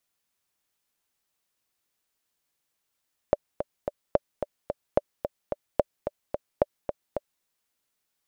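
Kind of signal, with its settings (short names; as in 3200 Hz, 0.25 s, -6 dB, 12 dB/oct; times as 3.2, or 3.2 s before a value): metronome 219 bpm, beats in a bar 3, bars 5, 584 Hz, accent 8.5 dB -6 dBFS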